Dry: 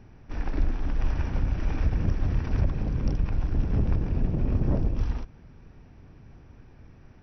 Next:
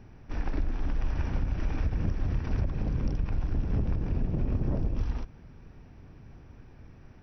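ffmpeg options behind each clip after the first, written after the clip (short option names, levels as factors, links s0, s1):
-af "acompressor=threshold=0.0708:ratio=6"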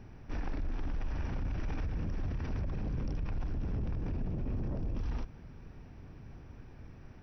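-af "alimiter=level_in=1.68:limit=0.0631:level=0:latency=1:release=19,volume=0.596"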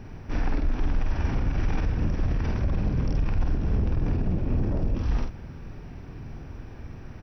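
-filter_complex "[0:a]asplit=2[s0][s1];[s1]adelay=49,volume=0.631[s2];[s0][s2]amix=inputs=2:normalize=0,volume=2.66"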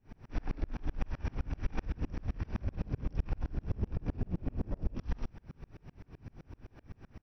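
-af "aeval=exprs='val(0)*pow(10,-35*if(lt(mod(-7.8*n/s,1),2*abs(-7.8)/1000),1-mod(-7.8*n/s,1)/(2*abs(-7.8)/1000),(mod(-7.8*n/s,1)-2*abs(-7.8)/1000)/(1-2*abs(-7.8)/1000))/20)':c=same,volume=0.794"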